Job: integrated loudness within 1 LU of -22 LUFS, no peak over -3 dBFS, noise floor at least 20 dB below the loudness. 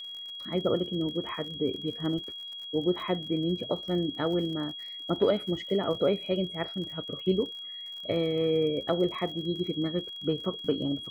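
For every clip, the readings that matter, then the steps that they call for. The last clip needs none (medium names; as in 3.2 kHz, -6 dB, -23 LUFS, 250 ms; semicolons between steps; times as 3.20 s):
tick rate 51 per s; steady tone 3.3 kHz; tone level -38 dBFS; loudness -30.0 LUFS; peak level -12.5 dBFS; loudness target -22.0 LUFS
-> de-click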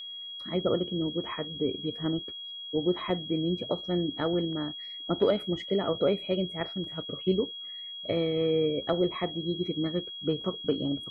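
tick rate 0.54 per s; steady tone 3.3 kHz; tone level -38 dBFS
-> band-stop 3.3 kHz, Q 30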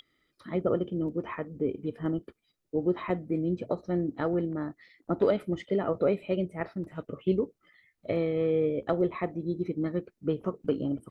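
steady tone not found; loudness -30.5 LUFS; peak level -13.0 dBFS; loudness target -22.0 LUFS
-> trim +8.5 dB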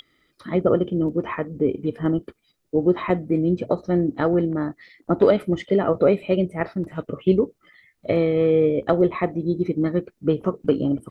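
loudness -22.0 LUFS; peak level -4.5 dBFS; noise floor -71 dBFS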